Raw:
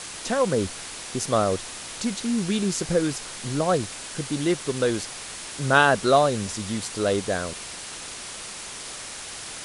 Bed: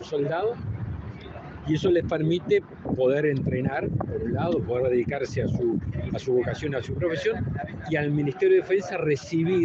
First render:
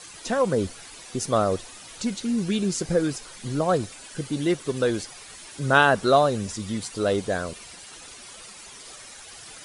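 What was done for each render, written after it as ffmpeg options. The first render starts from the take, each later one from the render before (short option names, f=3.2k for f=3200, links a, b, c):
-af "afftdn=nr=11:nf=-37"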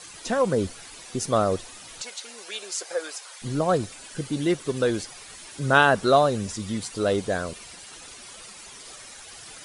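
-filter_complex "[0:a]asettb=1/sr,asplit=3[a][b][c];[a]atrim=end=2.014[d];[b]atrim=start=2.01:end=3.42,asetpts=PTS-STARTPTS,afade=t=in:d=0.004:c=qsin,afade=t=out:st=1.406:d=0.004:c=qsin,highpass=f=570:w=0.5412,highpass=f=570:w=1.3066[e];[c]atrim=start=3.416[f];[d][e]acrossfade=d=0.004:c1=hsin:c2=qsin[g];[g][f]acrossfade=d=0.004:c1=qsin:c2=hsin"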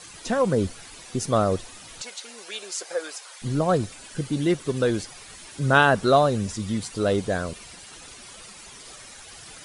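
-af "bass=f=250:g=4,treble=f=4k:g=-1"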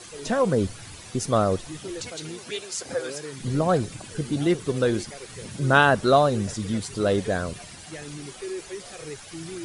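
-filter_complex "[1:a]volume=-14dB[a];[0:a][a]amix=inputs=2:normalize=0"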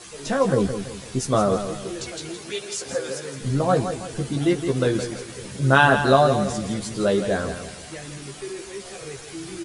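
-filter_complex "[0:a]asplit=2[a][b];[b]adelay=15,volume=-4dB[c];[a][c]amix=inputs=2:normalize=0,asplit=2[d][e];[e]aecho=0:1:166|332|498|664:0.355|0.142|0.0568|0.0227[f];[d][f]amix=inputs=2:normalize=0"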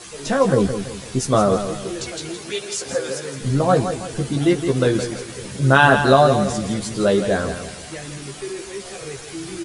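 -af "volume=3.5dB,alimiter=limit=-2dB:level=0:latency=1"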